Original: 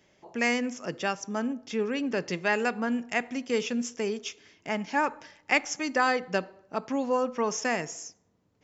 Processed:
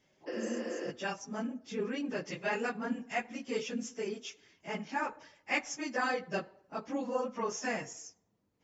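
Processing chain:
random phases in long frames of 50 ms
healed spectral selection 0:00.30–0:00.85, 240–5,900 Hz after
level −7 dB

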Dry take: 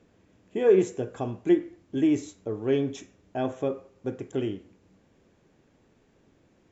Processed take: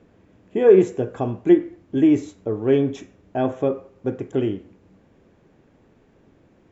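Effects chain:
high-shelf EQ 3,600 Hz −11.5 dB
level +7 dB

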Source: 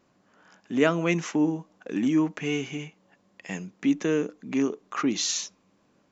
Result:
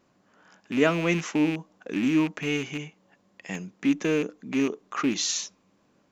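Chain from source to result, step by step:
loose part that buzzes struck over −32 dBFS, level −24 dBFS

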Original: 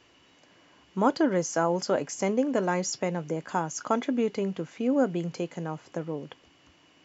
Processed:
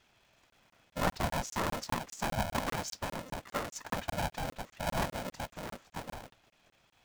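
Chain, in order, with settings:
random phases in short frames
regular buffer underruns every 0.20 s, samples 1,024, zero, from 0:00.50
ring modulator with a square carrier 390 Hz
level −8 dB

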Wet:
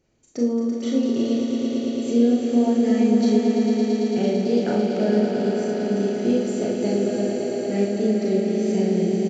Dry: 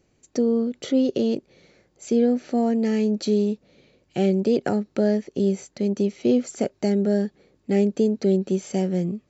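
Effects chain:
downsampling to 16,000 Hz
0:06.16–0:06.78: surface crackle 160 per second −52 dBFS
echo that builds up and dies away 112 ms, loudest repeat 5, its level −7 dB
four-comb reverb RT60 0.44 s, combs from 26 ms, DRR −1.5 dB
level −5.5 dB

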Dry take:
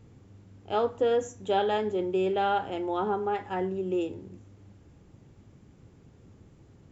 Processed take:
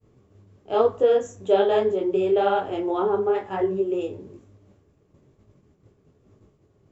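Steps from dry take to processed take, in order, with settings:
downward expander −47 dBFS
hollow resonant body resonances 420/600/1,100 Hz, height 9 dB, ringing for 35 ms
micro pitch shift up and down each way 38 cents
level +4.5 dB

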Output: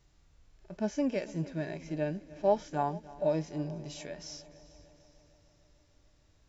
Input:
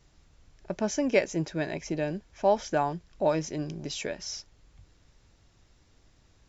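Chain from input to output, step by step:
harmonic and percussive parts rebalanced percussive −15 dB
echo machine with several playback heads 149 ms, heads second and third, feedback 56%, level −20 dB
level −1.5 dB

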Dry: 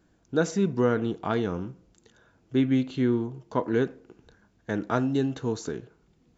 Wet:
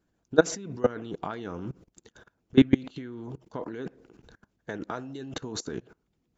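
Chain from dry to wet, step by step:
output level in coarse steps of 20 dB
harmonic and percussive parts rebalanced percussive +9 dB

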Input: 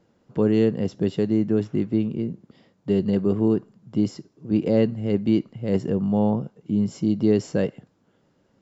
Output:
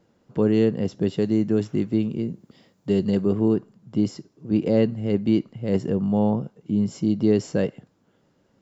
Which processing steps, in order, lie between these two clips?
high-shelf EQ 5,300 Hz +2 dB, from 0:01.22 +11.5 dB, from 0:03.25 +2 dB

